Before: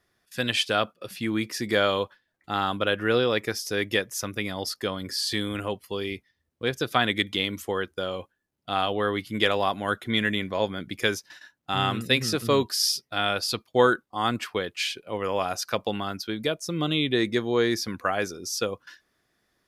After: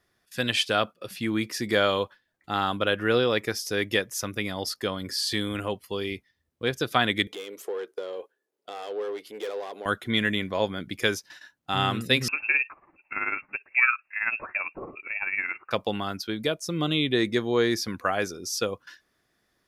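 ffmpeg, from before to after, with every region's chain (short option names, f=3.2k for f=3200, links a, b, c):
-filter_complex "[0:a]asettb=1/sr,asplit=3[a][b][c];[a]atrim=end=7.274[d];[b]atrim=start=7.27:end=9.86,asetpts=PTS-STARTPTS,afade=t=in:d=0.004:c=qsin,afade=t=out:st=2.586:d=0.004:c=qsin,aeval=exprs='(tanh(20*val(0)+0.45)-tanh(0.45))/20':c=same,acompressor=threshold=-39dB:ratio=3:attack=3.2:release=140:knee=1:detection=peak,highpass=f=430:t=q:w=4.9[e];[c]atrim=start=9.856[f];[d][e]acrossfade=d=0.004:c1=hsin:c2=qsin[g];[g][f]acrossfade=d=0.004:c1=qsin:c2=hsin,asettb=1/sr,asplit=3[h][i][j];[h]atrim=end=12.284[k];[i]atrim=start=12.28:end=15.71,asetpts=PTS-STARTPTS,afade=t=in:d=0.004:c=qsin,afade=t=out:st=3.426:d=0.004:c=qsin,acompressor=mode=upward:threshold=-23dB:ratio=2.5:attack=3.2:release=140:knee=2.83:detection=peak,tremolo=f=18:d=0.58,lowpass=f=2.4k:t=q:w=0.5098,lowpass=f=2.4k:t=q:w=0.6013,lowpass=f=2.4k:t=q:w=0.9,lowpass=f=2.4k:t=q:w=2.563,afreqshift=-2800[l];[j]atrim=start=15.706[m];[k][l]acrossfade=d=0.004:c1=hsin:c2=qsin[n];[n][m]acrossfade=d=0.004:c1=qsin:c2=hsin"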